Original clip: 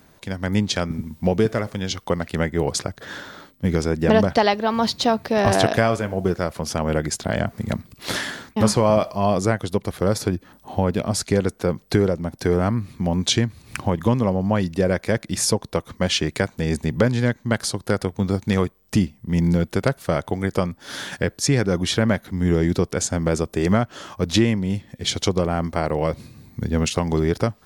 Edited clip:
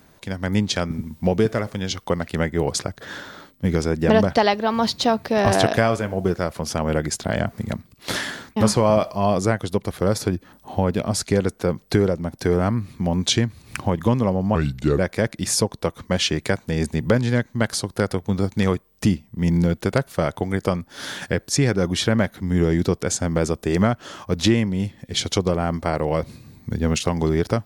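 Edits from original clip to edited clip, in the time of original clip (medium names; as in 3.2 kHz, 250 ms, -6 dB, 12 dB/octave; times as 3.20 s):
7.60–8.08 s: fade out quadratic, to -7 dB
14.55–14.89 s: speed 78%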